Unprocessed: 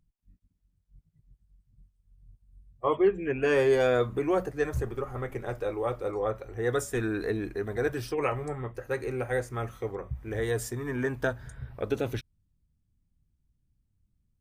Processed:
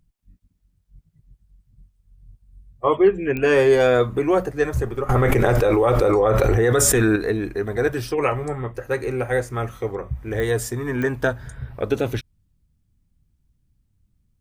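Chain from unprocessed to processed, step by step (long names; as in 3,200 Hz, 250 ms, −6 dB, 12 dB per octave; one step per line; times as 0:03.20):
digital clicks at 0:03.37/0:10.40/0:11.02, −23 dBFS
0:05.09–0:07.16: envelope flattener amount 100%
level +7.5 dB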